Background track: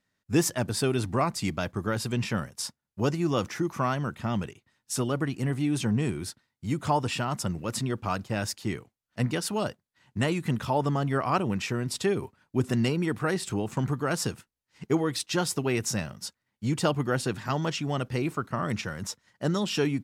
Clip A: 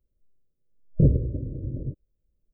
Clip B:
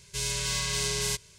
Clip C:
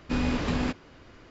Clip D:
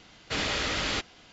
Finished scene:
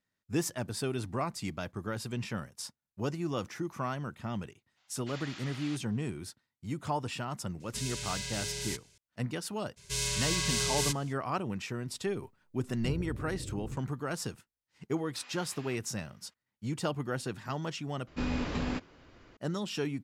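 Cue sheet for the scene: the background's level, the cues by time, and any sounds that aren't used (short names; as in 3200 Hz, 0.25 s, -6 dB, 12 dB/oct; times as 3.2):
background track -7.5 dB
4.76 add D -16.5 dB, fades 0.02 s + HPF 670 Hz 24 dB/oct
7.6 add B -8 dB + notch 1100 Hz, Q 6.4
9.76 add B -1.5 dB, fades 0.02 s
11.85 add A -1 dB + compressor 2.5:1, threshold -40 dBFS
15.04 add C -15 dB + HPF 1200 Hz
18.07 replace with C -5.5 dB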